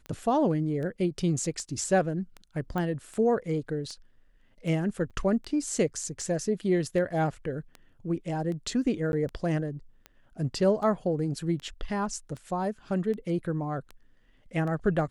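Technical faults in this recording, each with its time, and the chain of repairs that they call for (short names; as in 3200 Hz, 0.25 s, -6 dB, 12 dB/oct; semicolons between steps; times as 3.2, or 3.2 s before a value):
tick 78 rpm -27 dBFS
2.78 pop -20 dBFS
5.1–5.11 gap 6.8 ms
9.12–9.13 gap 11 ms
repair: de-click; interpolate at 5.1, 6.8 ms; interpolate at 9.12, 11 ms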